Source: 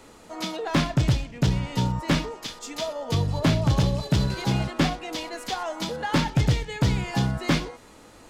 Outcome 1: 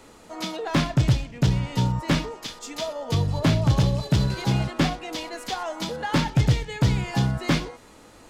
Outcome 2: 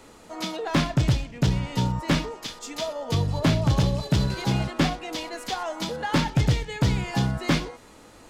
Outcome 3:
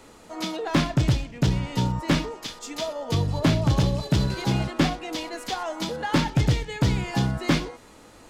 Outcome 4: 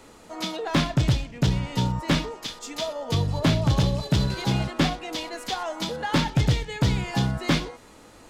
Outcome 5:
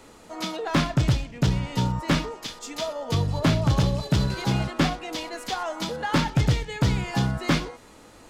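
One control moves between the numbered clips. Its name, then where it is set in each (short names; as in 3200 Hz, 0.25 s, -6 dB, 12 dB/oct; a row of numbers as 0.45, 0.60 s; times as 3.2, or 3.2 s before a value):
dynamic EQ, frequency: 120, 9800, 320, 3600, 1300 Hz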